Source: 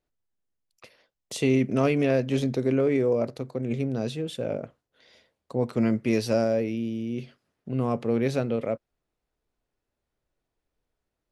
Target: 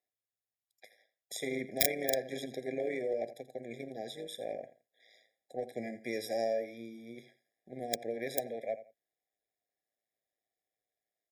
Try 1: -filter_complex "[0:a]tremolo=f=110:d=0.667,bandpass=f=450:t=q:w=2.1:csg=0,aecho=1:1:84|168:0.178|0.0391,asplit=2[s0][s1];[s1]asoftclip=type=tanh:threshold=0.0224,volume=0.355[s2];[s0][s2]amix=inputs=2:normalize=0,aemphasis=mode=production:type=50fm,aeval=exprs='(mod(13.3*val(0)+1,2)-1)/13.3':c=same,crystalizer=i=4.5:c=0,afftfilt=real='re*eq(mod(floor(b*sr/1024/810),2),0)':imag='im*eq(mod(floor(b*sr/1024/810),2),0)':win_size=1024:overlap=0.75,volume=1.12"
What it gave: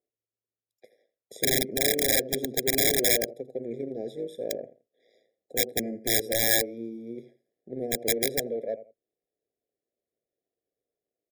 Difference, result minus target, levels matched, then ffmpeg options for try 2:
1 kHz band -8.0 dB
-filter_complex "[0:a]tremolo=f=110:d=0.667,bandpass=f=1000:t=q:w=2.1:csg=0,aecho=1:1:84|168:0.178|0.0391,asplit=2[s0][s1];[s1]asoftclip=type=tanh:threshold=0.0224,volume=0.355[s2];[s0][s2]amix=inputs=2:normalize=0,aemphasis=mode=production:type=50fm,aeval=exprs='(mod(13.3*val(0)+1,2)-1)/13.3':c=same,crystalizer=i=4.5:c=0,afftfilt=real='re*eq(mod(floor(b*sr/1024/810),2),0)':imag='im*eq(mod(floor(b*sr/1024/810),2),0)':win_size=1024:overlap=0.75,volume=1.12"

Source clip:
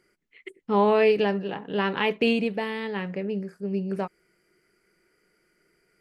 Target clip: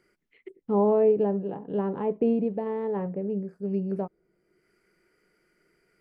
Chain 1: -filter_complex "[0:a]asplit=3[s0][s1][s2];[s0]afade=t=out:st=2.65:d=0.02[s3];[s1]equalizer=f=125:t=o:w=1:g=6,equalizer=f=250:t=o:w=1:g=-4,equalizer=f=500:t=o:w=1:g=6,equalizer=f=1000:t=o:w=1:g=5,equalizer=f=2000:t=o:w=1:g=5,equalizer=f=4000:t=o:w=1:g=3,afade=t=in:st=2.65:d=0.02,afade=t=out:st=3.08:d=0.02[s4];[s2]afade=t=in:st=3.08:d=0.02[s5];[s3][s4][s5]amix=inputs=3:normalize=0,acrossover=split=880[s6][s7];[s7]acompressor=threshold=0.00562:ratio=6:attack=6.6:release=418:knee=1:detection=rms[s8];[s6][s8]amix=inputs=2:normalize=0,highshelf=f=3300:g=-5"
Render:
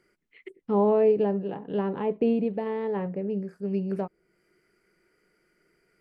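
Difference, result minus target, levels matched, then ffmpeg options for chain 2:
compression: peak gain reduction -9.5 dB
-filter_complex "[0:a]asplit=3[s0][s1][s2];[s0]afade=t=out:st=2.65:d=0.02[s3];[s1]equalizer=f=125:t=o:w=1:g=6,equalizer=f=250:t=o:w=1:g=-4,equalizer=f=500:t=o:w=1:g=6,equalizer=f=1000:t=o:w=1:g=5,equalizer=f=2000:t=o:w=1:g=5,equalizer=f=4000:t=o:w=1:g=3,afade=t=in:st=2.65:d=0.02,afade=t=out:st=3.08:d=0.02[s4];[s2]afade=t=in:st=3.08:d=0.02[s5];[s3][s4][s5]amix=inputs=3:normalize=0,acrossover=split=880[s6][s7];[s7]acompressor=threshold=0.0015:ratio=6:attack=6.6:release=418:knee=1:detection=rms[s8];[s6][s8]amix=inputs=2:normalize=0,highshelf=f=3300:g=-5"

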